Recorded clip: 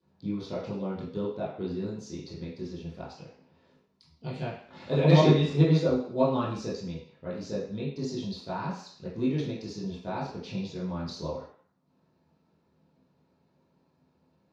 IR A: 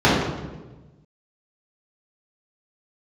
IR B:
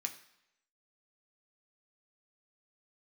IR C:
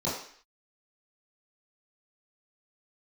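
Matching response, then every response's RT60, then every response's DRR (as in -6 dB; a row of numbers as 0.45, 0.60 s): C; 1.2, 0.80, 0.55 s; -9.0, 3.0, -11.0 dB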